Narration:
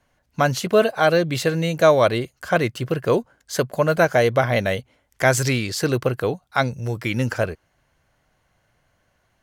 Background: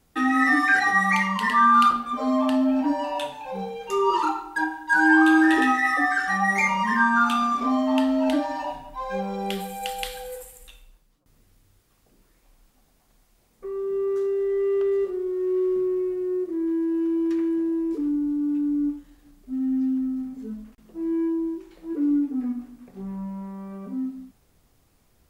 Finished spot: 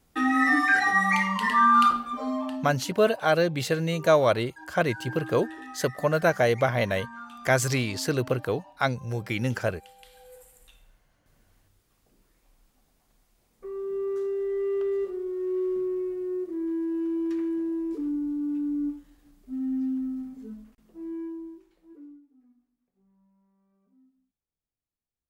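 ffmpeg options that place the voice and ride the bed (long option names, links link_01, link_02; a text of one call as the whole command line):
ffmpeg -i stem1.wav -i stem2.wav -filter_complex "[0:a]adelay=2250,volume=-5dB[link_01];[1:a]volume=15.5dB,afade=type=out:start_time=1.9:duration=0.87:silence=0.1,afade=type=in:start_time=10.04:duration=1.1:silence=0.133352,afade=type=out:start_time=20.12:duration=2.09:silence=0.0354813[link_02];[link_01][link_02]amix=inputs=2:normalize=0" out.wav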